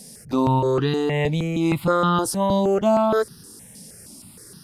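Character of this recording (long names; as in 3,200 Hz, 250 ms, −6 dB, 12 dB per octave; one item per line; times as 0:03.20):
notches that jump at a steady rate 6.4 Hz 350–2,200 Hz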